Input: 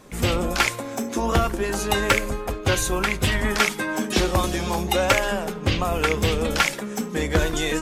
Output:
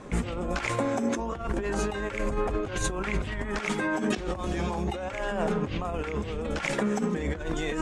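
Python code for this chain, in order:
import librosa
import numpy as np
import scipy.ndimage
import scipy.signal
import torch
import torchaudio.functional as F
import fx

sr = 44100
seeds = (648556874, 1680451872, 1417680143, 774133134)

y = scipy.signal.sosfilt(scipy.signal.butter(4, 7800.0, 'lowpass', fs=sr, output='sos'), x)
y = fx.peak_eq(y, sr, hz=5000.0, db=-10.0, octaves=1.6)
y = fx.over_compress(y, sr, threshold_db=-30.0, ratio=-1.0)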